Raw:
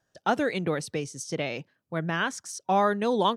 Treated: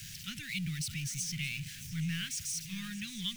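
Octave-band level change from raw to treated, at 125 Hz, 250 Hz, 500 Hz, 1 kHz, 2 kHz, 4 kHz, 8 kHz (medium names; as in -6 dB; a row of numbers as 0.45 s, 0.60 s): -2.0 dB, -9.5 dB, under -40 dB, under -30 dB, -8.5 dB, -1.0 dB, +2.0 dB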